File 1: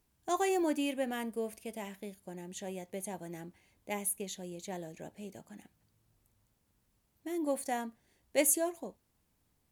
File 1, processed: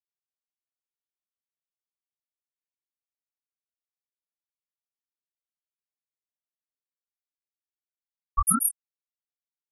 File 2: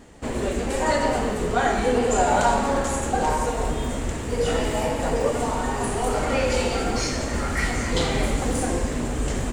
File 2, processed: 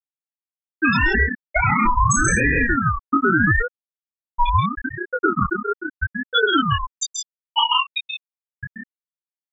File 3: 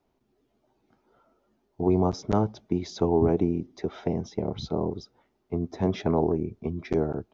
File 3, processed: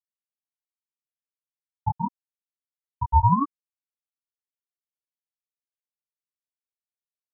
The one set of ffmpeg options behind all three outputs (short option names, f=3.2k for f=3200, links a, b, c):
-af "aeval=exprs='if(lt(val(0),0),0.708*val(0),val(0))':c=same,highpass=42,tiltshelf=f=770:g=-8,afftfilt=real='re*gte(hypot(re,im),0.447)':imag='im*gte(hypot(re,im),0.447)':win_size=1024:overlap=0.75,flanger=delay=19:depth=4.7:speed=0.28,acompressor=threshold=-29dB:ratio=6,aecho=1:1:131.2|163.3:0.501|0.631,alimiter=level_in=28dB:limit=-1dB:release=50:level=0:latency=1,aeval=exprs='val(0)*sin(2*PI*750*n/s+750*0.35/0.79*sin(2*PI*0.79*n/s))':c=same,volume=-6dB"